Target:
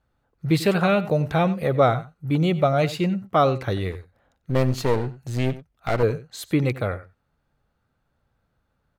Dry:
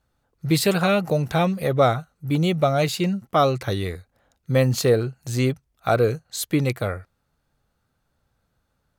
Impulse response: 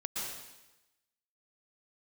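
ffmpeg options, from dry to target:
-filter_complex "[0:a]bass=frequency=250:gain=0,treble=frequency=4000:gain=-10,asettb=1/sr,asplit=3[link_01][link_02][link_03];[link_01]atrim=end=3.924[link_04];[link_02]atrim=start=3.92:end=6.03,asetpts=PTS-STARTPTS,afade=type=in:duration=0.004:curve=qsin,afade=type=out:start_time=2.106:duration=0.004:curve=qsin,aeval=exprs='clip(val(0),-1,0.0355)':channel_layout=same[link_05];[link_03]atrim=start=6.026[link_06];[link_04][link_05]acrossfade=duration=0.004:curve1=hsin:curve2=qsin[link_07];[link_07][link_06]acrossfade=duration=0.004:curve1=qsin:curve2=hsin,asplit=2[link_08][link_09];[link_09]adelay=93.29,volume=-16dB,highshelf=frequency=4000:gain=-2.1[link_10];[link_08][link_10]amix=inputs=2:normalize=0"

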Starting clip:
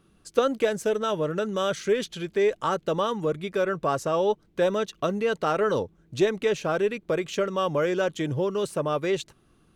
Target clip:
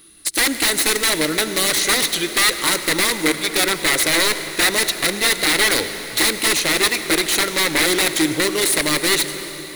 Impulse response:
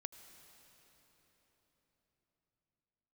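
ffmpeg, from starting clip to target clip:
-filter_complex "[0:a]crystalizer=i=7:c=0,aeval=exprs='(mod(7.5*val(0)+1,2)-1)/7.5':channel_layout=same,equalizer=frequency=125:width_type=o:width=0.33:gain=-10,equalizer=frequency=200:width_type=o:width=0.33:gain=-4,equalizer=frequency=315:width_type=o:width=0.33:gain=11,equalizer=frequency=2000:width_type=o:width=0.33:gain=12,equalizer=frequency=4000:width_type=o:width=0.33:gain=11,equalizer=frequency=10000:width_type=o:width=0.33:gain=10[link_01];[1:a]atrim=start_sample=2205[link_02];[link_01][link_02]afir=irnorm=-1:irlink=0,volume=6dB"

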